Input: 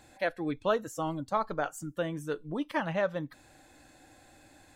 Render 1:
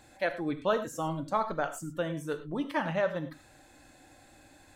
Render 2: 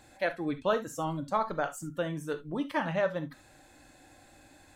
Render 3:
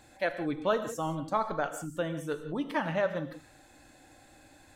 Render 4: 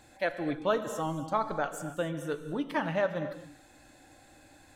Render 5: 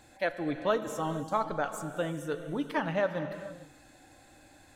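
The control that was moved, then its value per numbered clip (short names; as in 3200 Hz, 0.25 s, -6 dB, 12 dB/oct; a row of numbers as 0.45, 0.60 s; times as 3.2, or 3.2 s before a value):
non-linear reverb, gate: 130, 90, 200, 310, 490 ms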